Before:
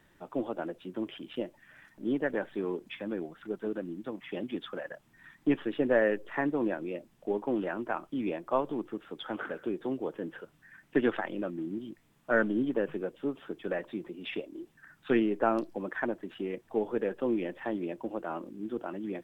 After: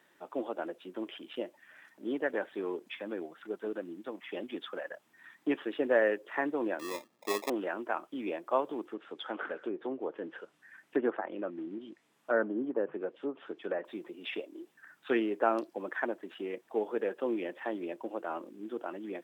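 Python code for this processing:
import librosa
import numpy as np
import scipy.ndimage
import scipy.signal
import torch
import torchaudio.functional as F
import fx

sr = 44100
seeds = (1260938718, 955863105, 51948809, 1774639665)

y = fx.sample_hold(x, sr, seeds[0], rate_hz=1500.0, jitter_pct=0, at=(6.79, 7.5))
y = fx.env_lowpass_down(y, sr, base_hz=1200.0, full_db=-27.5, at=(8.86, 13.85))
y = scipy.signal.sosfilt(scipy.signal.butter(2, 340.0, 'highpass', fs=sr, output='sos'), y)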